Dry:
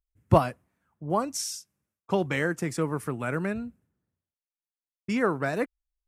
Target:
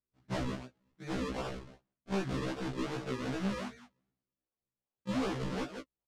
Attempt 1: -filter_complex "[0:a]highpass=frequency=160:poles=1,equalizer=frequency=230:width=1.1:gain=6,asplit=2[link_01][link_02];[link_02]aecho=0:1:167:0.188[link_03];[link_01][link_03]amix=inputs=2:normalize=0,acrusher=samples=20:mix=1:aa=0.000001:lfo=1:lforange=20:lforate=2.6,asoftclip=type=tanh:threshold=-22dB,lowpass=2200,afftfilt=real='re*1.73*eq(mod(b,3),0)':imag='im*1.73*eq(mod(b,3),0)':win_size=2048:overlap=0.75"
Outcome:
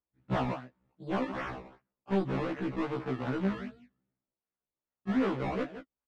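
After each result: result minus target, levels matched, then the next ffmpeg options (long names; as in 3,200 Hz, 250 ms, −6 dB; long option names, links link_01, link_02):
8,000 Hz band −15.5 dB; sample-and-hold swept by an LFO: distortion −7 dB; soft clipping: distortion −4 dB
-filter_complex "[0:a]highpass=frequency=160:poles=1,equalizer=frequency=230:width=1.1:gain=6,asplit=2[link_01][link_02];[link_02]aecho=0:1:167:0.188[link_03];[link_01][link_03]amix=inputs=2:normalize=0,acrusher=samples=20:mix=1:aa=0.000001:lfo=1:lforange=20:lforate=2.6,asoftclip=type=tanh:threshold=-22dB,lowpass=6100,afftfilt=real='re*1.73*eq(mod(b,3),0)':imag='im*1.73*eq(mod(b,3),0)':win_size=2048:overlap=0.75"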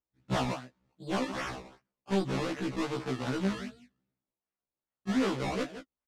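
sample-and-hold swept by an LFO: distortion −7 dB; soft clipping: distortion −4 dB
-filter_complex "[0:a]highpass=frequency=160:poles=1,equalizer=frequency=230:width=1.1:gain=6,asplit=2[link_01][link_02];[link_02]aecho=0:1:167:0.188[link_03];[link_01][link_03]amix=inputs=2:normalize=0,acrusher=samples=41:mix=1:aa=0.000001:lfo=1:lforange=41:lforate=2.6,asoftclip=type=tanh:threshold=-22dB,lowpass=6100,afftfilt=real='re*1.73*eq(mod(b,3),0)':imag='im*1.73*eq(mod(b,3),0)':win_size=2048:overlap=0.75"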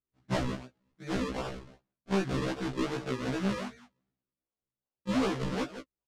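soft clipping: distortion −4 dB
-filter_complex "[0:a]highpass=frequency=160:poles=1,equalizer=frequency=230:width=1.1:gain=6,asplit=2[link_01][link_02];[link_02]aecho=0:1:167:0.188[link_03];[link_01][link_03]amix=inputs=2:normalize=0,acrusher=samples=41:mix=1:aa=0.000001:lfo=1:lforange=41:lforate=2.6,asoftclip=type=tanh:threshold=-29dB,lowpass=6100,afftfilt=real='re*1.73*eq(mod(b,3),0)':imag='im*1.73*eq(mod(b,3),0)':win_size=2048:overlap=0.75"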